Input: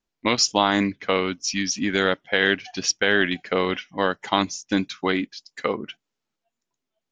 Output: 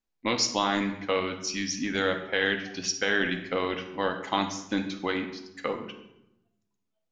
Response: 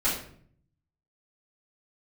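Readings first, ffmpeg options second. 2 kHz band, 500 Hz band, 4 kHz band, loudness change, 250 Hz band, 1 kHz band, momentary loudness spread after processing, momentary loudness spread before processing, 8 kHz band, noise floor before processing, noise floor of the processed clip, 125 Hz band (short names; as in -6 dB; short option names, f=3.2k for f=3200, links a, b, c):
-5.5 dB, -5.5 dB, -6.0 dB, -5.5 dB, -5.5 dB, -5.5 dB, 8 LU, 8 LU, -6.0 dB, -84 dBFS, -80 dBFS, -6.0 dB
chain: -filter_complex "[0:a]asplit=2[a][b];[1:a]atrim=start_sample=2205,asetrate=26460,aresample=44100[c];[b][c]afir=irnorm=-1:irlink=0,volume=-18.5dB[d];[a][d]amix=inputs=2:normalize=0,volume=-7.5dB"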